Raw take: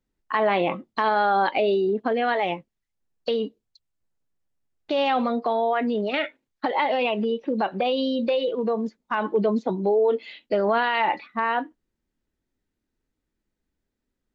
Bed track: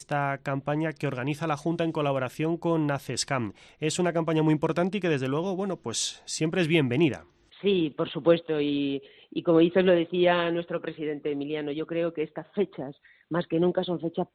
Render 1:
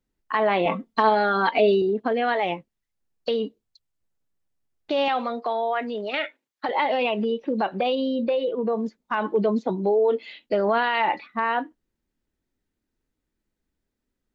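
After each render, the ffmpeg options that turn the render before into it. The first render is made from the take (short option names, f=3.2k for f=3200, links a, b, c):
-filter_complex "[0:a]asettb=1/sr,asplit=3[a][b][c];[a]atrim=end=0.654[d];[b]atrim=start=0.65:end=1.82,asetpts=PTS-STARTPTS,afade=t=in:d=0.004:c=qsin,afade=t=out:st=1.166:d=0.004:c=qsin,aecho=1:1:4.4:0.92,atrim=end_sample=51597[e];[c]atrim=start=1.816[f];[d][e]acrossfade=d=0.004:c1=hsin:c2=qsin[g];[g][f]acrossfade=d=0.004:c1=qsin:c2=hsin,asettb=1/sr,asplit=3[h][i][j];[h]atrim=end=5.084[k];[i]atrim=start=5.08:end=6.69,asetpts=PTS-STARTPTS,afade=t=in:d=0.004:c=qsin,afade=t=out:st=1.606:d=0.004:c=qsin,highpass=f=530:p=1[l];[j]atrim=start=6.686[m];[k][l]acrossfade=d=0.004:c1=hsin:c2=qsin[n];[n][m]acrossfade=d=0.004:c1=qsin:c2=hsin,asettb=1/sr,asplit=3[o][p][q];[o]atrim=end=7.954[r];[p]atrim=start=7.95:end=8.73,asetpts=PTS-STARTPTS,afade=t=in:d=0.004:c=qsin,afade=t=out:st=0.776:d=0.004:c=qsin,lowpass=f=1.9k:p=1[s];[q]atrim=start=8.726[t];[r][s]acrossfade=d=0.004:c1=hsin:c2=qsin[u];[u][t]acrossfade=d=0.004:c1=qsin:c2=hsin"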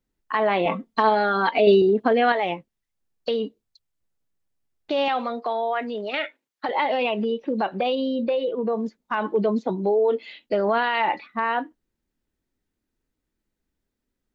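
-filter_complex "[0:a]asplit=3[a][b][c];[a]atrim=end=1.672[d];[b]atrim=start=1.668:end=2.322,asetpts=PTS-STARTPTS,volume=4.5dB[e];[c]atrim=start=2.318[f];[d][e]acrossfade=d=0.004:c1=hsin:c2=hsin[g];[g][f]acrossfade=d=0.004:c1=hsin:c2=hsin"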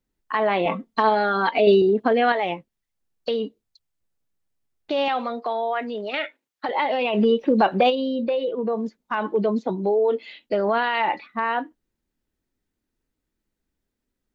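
-filter_complex "[0:a]asplit=3[a][b][c];[a]afade=t=out:st=7.13:d=0.02[d];[b]acontrast=78,afade=t=in:st=7.13:d=0.02,afade=t=out:st=7.89:d=0.02[e];[c]afade=t=in:st=7.89:d=0.02[f];[d][e][f]amix=inputs=3:normalize=0"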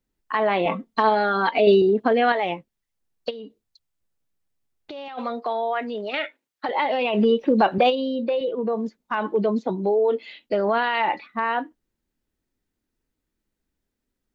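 -filter_complex "[0:a]asplit=3[a][b][c];[a]afade=t=out:st=3.29:d=0.02[d];[b]acompressor=threshold=-34dB:ratio=6:attack=3.2:release=140:knee=1:detection=peak,afade=t=in:st=3.29:d=0.02,afade=t=out:st=5.17:d=0.02[e];[c]afade=t=in:st=5.17:d=0.02[f];[d][e][f]amix=inputs=3:normalize=0,asettb=1/sr,asplit=3[g][h][i];[g]atrim=end=7.784[j];[h]atrim=start=7.78:end=8.41,asetpts=PTS-STARTPTS,afade=t=in:d=0.004:c=qsin,afade=t=out:st=0.626:d=0.004:c=qsin,highpass=190[k];[i]atrim=start=8.406[l];[j][k]acrossfade=d=0.004:c1=hsin:c2=qsin[m];[m][l]acrossfade=d=0.004:c1=qsin:c2=hsin"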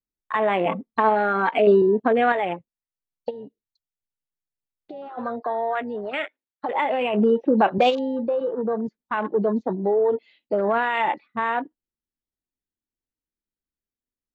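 -af "afwtdn=0.0251"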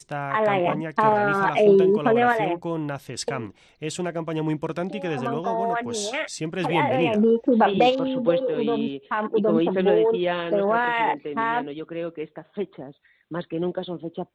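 -filter_complex "[1:a]volume=-2.5dB[a];[0:a][a]amix=inputs=2:normalize=0"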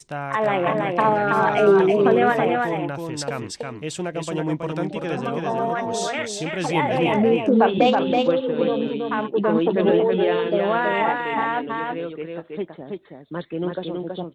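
-af "aecho=1:1:325:0.668"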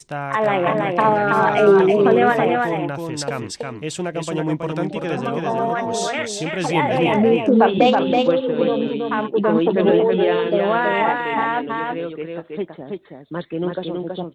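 -af "volume=2.5dB,alimiter=limit=-2dB:level=0:latency=1"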